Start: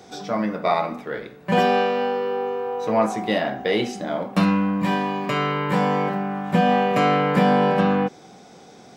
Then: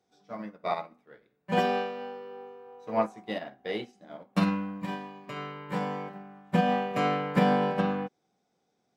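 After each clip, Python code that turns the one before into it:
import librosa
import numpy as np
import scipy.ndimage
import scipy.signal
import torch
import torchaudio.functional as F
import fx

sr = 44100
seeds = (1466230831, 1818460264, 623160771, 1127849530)

y = fx.upward_expand(x, sr, threshold_db=-32.0, expansion=2.5)
y = y * 10.0 ** (-4.0 / 20.0)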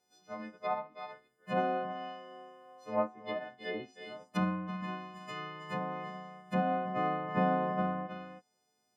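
y = fx.freq_snap(x, sr, grid_st=3)
y = y + 10.0 ** (-11.5 / 20.0) * np.pad(y, (int(320 * sr / 1000.0), 0))[:len(y)]
y = fx.env_lowpass_down(y, sr, base_hz=1400.0, full_db=-26.5)
y = y * 10.0 ** (-5.0 / 20.0)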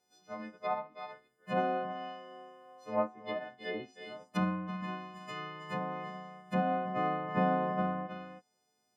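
y = x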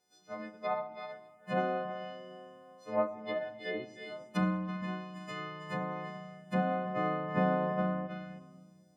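y = fx.room_shoebox(x, sr, seeds[0], volume_m3=3300.0, walls='mixed', distance_m=0.62)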